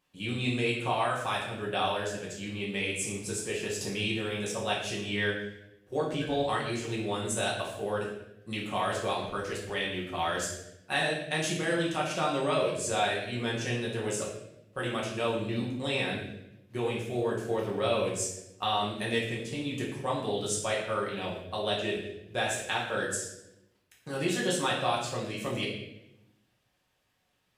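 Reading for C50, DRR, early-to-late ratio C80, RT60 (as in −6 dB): 3.5 dB, −5.0 dB, 6.5 dB, 0.85 s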